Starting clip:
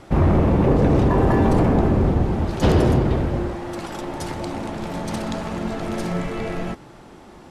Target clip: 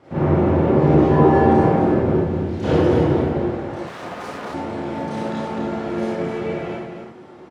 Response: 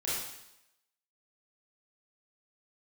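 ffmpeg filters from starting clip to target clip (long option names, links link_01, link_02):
-filter_complex "[0:a]aemphasis=mode=reproduction:type=75fm,asettb=1/sr,asplit=3[link_01][link_02][link_03];[link_01]atrim=end=0.724[link_04];[link_02]atrim=start=0.72:end=1.49,asetpts=PTS-STARTPTS,afade=type=in:duration=0.004:curve=qsin,afade=type=out:start_time=0.766:duration=0.004:curve=qsin,asplit=2[link_05][link_06];[link_06]adelay=13,volume=-3.5dB[link_07];[link_05][link_07]amix=inputs=2:normalize=0,atrim=end_sample=33957[link_08];[link_03]atrim=start=1.486[link_09];[link_04][link_08]acrossfade=duration=0.004:curve1=hsin:curve2=qsin[link_10];[link_10][link_09]acrossfade=duration=0.004:curve1=qsin:curve2=hsin,asettb=1/sr,asplit=3[link_11][link_12][link_13];[link_11]atrim=end=2.154[link_14];[link_12]atrim=start=2.15:end=2.64,asetpts=PTS-STARTPTS,afade=type=in:duration=0.004:curve=qsin,afade=type=out:start_time=0.486:duration=0.004:curve=qsin,equalizer=frequency=940:width=0.66:gain=-10[link_15];[link_13]atrim=start=2.636[link_16];[link_14][link_15]acrossfade=duration=0.004:curve1=hsin:curve2=qsin[link_17];[link_17][link_16]acrossfade=duration=0.004:curve1=qsin:curve2=hsin,aecho=1:1:256:0.473[link_18];[1:a]atrim=start_sample=2205,afade=type=out:start_time=0.2:duration=0.01,atrim=end_sample=9261[link_19];[link_18][link_19]afir=irnorm=-1:irlink=0,asettb=1/sr,asplit=3[link_20][link_21][link_22];[link_20]atrim=end=3.874[link_23];[link_21]atrim=start=3.87:end=4.54,asetpts=PTS-STARTPTS,afade=type=in:duration=0.004:curve=qsin,afade=type=out:start_time=0.666:duration=0.004:curve=qsin,aeval=exprs='abs(val(0))':channel_layout=same[link_24];[link_22]atrim=start=4.536[link_25];[link_23][link_24]acrossfade=duration=0.004:curve1=hsin:curve2=qsin[link_26];[link_26][link_25]acrossfade=duration=0.004:curve1=qsin:curve2=hsin,highpass=130,volume=-4.5dB"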